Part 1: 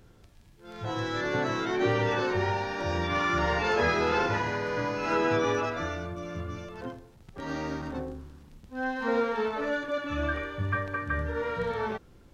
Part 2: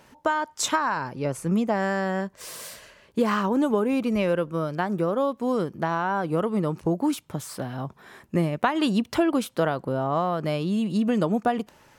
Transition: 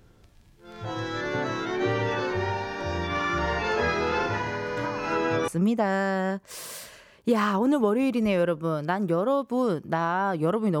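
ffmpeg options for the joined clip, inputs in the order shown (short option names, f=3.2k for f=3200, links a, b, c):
-filter_complex "[1:a]asplit=2[a][b];[0:a]apad=whole_dur=10.8,atrim=end=10.8,atrim=end=5.482[c];[b]atrim=start=1.378:end=6.7[d];[a]atrim=start=0.67:end=1.38,asetpts=PTS-STARTPTS,volume=-14dB,afade=t=in:d=0.004:c=hsin,afade=t=out:st=0.706:d=0.004:c=hsin,adelay=210357S[e];[c][d]acrossfade=d=0.004:c1=hsin:c2=hsin[f];[f][e]amix=inputs=2:normalize=0"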